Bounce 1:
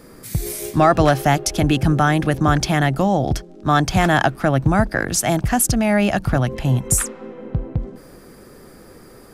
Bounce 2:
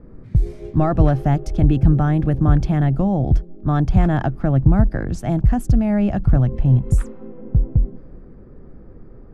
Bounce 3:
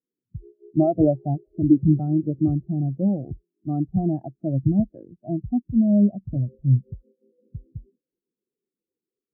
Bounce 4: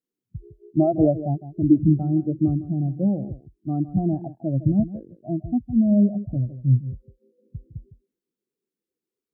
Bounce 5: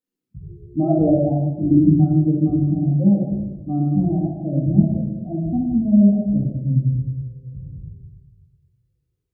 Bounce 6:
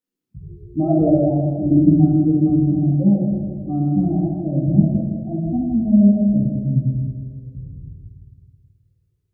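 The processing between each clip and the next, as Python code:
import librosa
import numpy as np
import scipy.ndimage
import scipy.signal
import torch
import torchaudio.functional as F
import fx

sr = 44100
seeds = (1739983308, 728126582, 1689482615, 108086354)

y1 = fx.env_lowpass(x, sr, base_hz=2000.0, full_db=-15.5)
y1 = fx.tilt_eq(y1, sr, slope=-4.5)
y1 = F.gain(torch.from_numpy(y1), -9.5).numpy()
y2 = fx.bandpass_q(y1, sr, hz=450.0, q=1.1)
y2 = fx.spectral_expand(y2, sr, expansion=2.5)
y2 = F.gain(torch.from_numpy(y2), 4.5).numpy()
y3 = y2 + 10.0 ** (-14.0 / 20.0) * np.pad(y2, (int(158 * sr / 1000.0), 0))[:len(y2)]
y4 = fx.room_shoebox(y3, sr, seeds[0], volume_m3=410.0, walls='mixed', distance_m=2.0)
y4 = F.gain(torch.from_numpy(y4), -3.5).numpy()
y5 = fx.echo_feedback(y4, sr, ms=161, feedback_pct=58, wet_db=-8.5)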